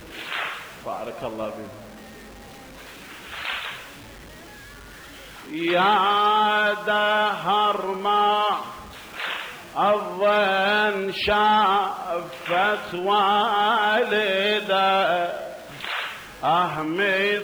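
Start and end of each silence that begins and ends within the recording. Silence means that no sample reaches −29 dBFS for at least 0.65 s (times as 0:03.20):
0:01.64–0:03.27
0:03.75–0:05.52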